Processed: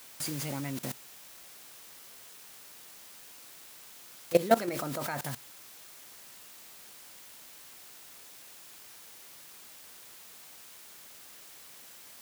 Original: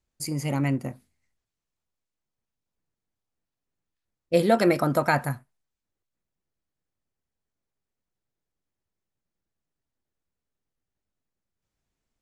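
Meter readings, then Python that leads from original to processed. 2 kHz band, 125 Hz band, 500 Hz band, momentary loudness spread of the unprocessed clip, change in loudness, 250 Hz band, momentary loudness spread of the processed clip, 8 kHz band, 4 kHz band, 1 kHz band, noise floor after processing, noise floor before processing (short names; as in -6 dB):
-9.0 dB, -11.5 dB, -6.0 dB, 13 LU, -14.0 dB, -9.5 dB, 14 LU, +2.0 dB, -2.0 dB, -6.5 dB, -51 dBFS, under -85 dBFS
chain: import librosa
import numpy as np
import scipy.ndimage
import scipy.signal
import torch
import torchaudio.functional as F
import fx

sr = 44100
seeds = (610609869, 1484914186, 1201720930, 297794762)

y = fx.quant_dither(x, sr, seeds[0], bits=6, dither='triangular')
y = fx.level_steps(y, sr, step_db=17)
y = fx.low_shelf(y, sr, hz=74.0, db=-12.0)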